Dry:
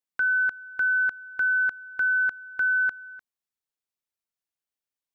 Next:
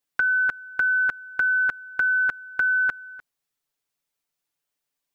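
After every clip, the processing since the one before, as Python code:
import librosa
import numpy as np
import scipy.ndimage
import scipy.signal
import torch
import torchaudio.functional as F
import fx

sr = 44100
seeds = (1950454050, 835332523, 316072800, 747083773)

y = x + 0.68 * np.pad(x, (int(6.9 * sr / 1000.0), 0))[:len(x)]
y = y * 10.0 ** (6.5 / 20.0)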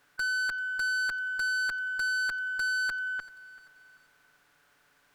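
y = fx.bin_compress(x, sr, power=0.6)
y = fx.tube_stage(y, sr, drive_db=28.0, bias=0.2)
y = fx.echo_feedback(y, sr, ms=388, feedback_pct=42, wet_db=-20.0)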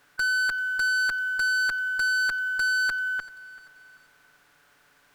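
y = fx.quant_float(x, sr, bits=4)
y = y * 10.0 ** (5.0 / 20.0)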